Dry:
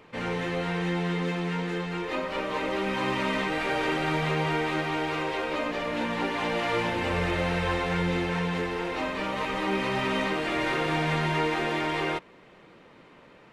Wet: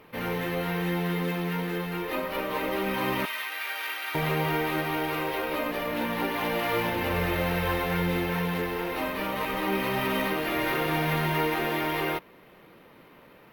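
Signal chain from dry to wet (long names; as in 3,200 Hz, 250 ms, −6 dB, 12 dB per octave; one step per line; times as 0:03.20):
0:03.25–0:04.15: high-pass filter 1,500 Hz 12 dB per octave
bad sample-rate conversion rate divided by 3×, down filtered, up hold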